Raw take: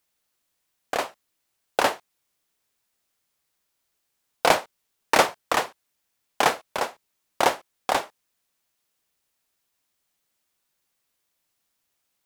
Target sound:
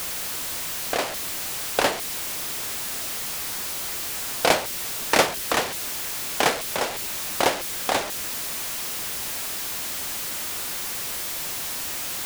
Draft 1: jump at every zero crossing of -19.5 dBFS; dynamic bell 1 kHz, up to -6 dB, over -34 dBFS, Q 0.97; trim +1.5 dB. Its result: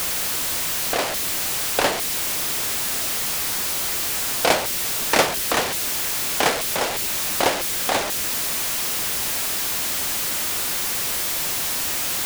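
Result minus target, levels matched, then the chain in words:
jump at every zero crossing: distortion +5 dB
jump at every zero crossing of -25.5 dBFS; dynamic bell 1 kHz, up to -6 dB, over -34 dBFS, Q 0.97; trim +1.5 dB

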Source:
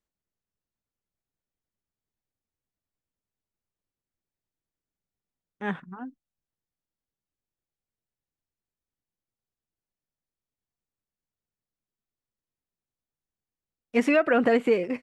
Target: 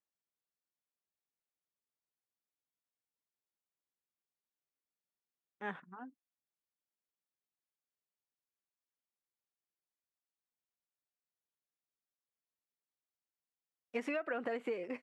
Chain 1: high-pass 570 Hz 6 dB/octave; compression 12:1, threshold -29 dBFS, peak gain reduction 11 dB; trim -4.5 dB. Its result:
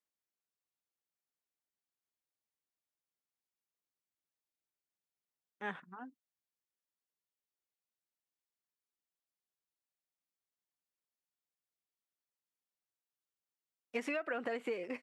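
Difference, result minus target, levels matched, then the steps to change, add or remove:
4 kHz band +3.0 dB
add after high-pass: treble shelf 2.6 kHz -7 dB

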